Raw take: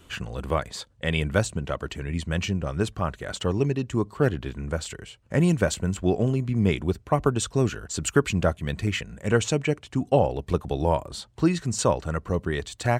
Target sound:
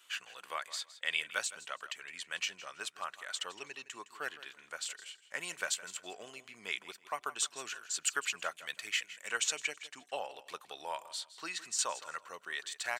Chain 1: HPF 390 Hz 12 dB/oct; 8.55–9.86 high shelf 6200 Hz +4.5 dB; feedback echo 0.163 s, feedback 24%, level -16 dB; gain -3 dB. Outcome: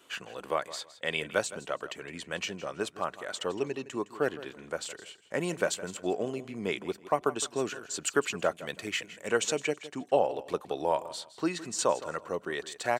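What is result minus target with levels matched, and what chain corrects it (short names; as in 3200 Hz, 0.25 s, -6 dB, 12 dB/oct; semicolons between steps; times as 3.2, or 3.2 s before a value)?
500 Hz band +12.0 dB
HPF 1500 Hz 12 dB/oct; 8.55–9.86 high shelf 6200 Hz +4.5 dB; feedback echo 0.163 s, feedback 24%, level -16 dB; gain -3 dB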